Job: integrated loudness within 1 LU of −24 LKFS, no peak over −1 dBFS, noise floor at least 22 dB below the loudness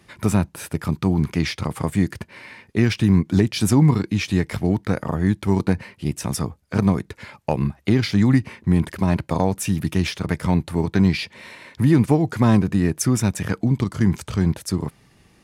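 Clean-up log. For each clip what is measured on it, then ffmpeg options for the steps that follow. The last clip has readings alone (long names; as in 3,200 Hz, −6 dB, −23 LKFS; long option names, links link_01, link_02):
integrated loudness −21.0 LKFS; sample peak −4.5 dBFS; target loudness −24.0 LKFS
→ -af "volume=-3dB"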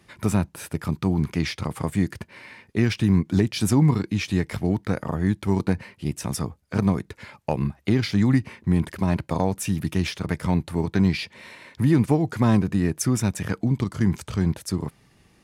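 integrated loudness −24.0 LKFS; sample peak −7.5 dBFS; background noise floor −59 dBFS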